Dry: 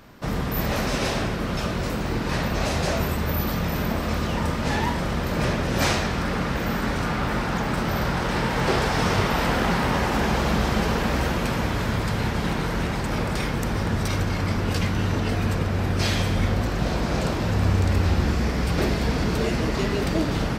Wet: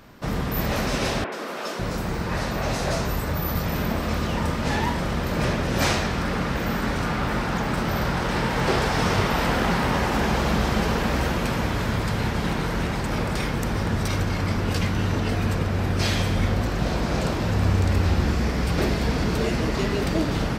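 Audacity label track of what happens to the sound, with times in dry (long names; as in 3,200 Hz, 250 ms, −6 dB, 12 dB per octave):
1.240000	3.660000	three-band delay without the direct sound mids, highs, lows 80/550 ms, splits 280/2,900 Hz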